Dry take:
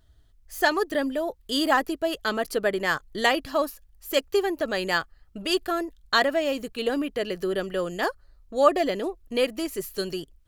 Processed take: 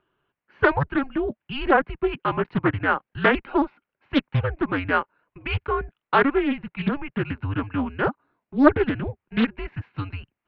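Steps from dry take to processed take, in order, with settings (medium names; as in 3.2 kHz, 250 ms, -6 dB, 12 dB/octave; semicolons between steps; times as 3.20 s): mistuned SSB -280 Hz 410–2800 Hz; loudspeaker Doppler distortion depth 0.42 ms; trim +4 dB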